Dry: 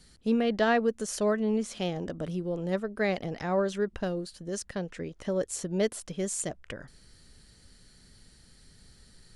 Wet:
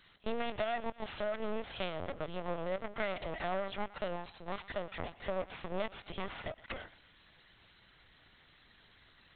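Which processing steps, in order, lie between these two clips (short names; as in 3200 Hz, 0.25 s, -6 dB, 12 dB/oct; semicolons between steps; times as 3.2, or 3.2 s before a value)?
minimum comb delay 1.5 ms; HPF 780 Hz 6 dB/oct; compressor 5:1, threshold -39 dBFS, peak gain reduction 14 dB; on a send: thinning echo 0.118 s, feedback 40%, high-pass 1000 Hz, level -15 dB; on the sum: LPC vocoder at 8 kHz pitch kept; gain +6 dB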